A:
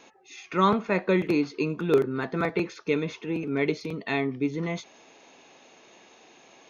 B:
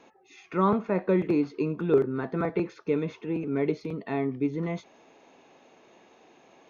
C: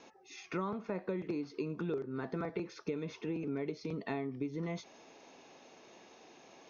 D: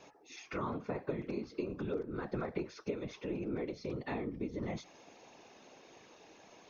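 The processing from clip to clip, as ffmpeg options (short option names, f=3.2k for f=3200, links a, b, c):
-filter_complex "[0:a]highshelf=f=2.2k:g=-12,acrossover=split=1500[a][b];[b]alimiter=level_in=12dB:limit=-24dB:level=0:latency=1:release=46,volume=-12dB[c];[a][c]amix=inputs=2:normalize=0"
-af "acompressor=threshold=-32dB:ratio=12,lowpass=f=5.6k:t=q:w=3.4,volume=-1.5dB"
-af "bandreject=f=50:t=h:w=6,bandreject=f=100:t=h:w=6,bandreject=f=150:t=h:w=6,afftfilt=real='hypot(re,im)*cos(2*PI*random(0))':imag='hypot(re,im)*sin(2*PI*random(1))':win_size=512:overlap=0.75,volume=5.5dB"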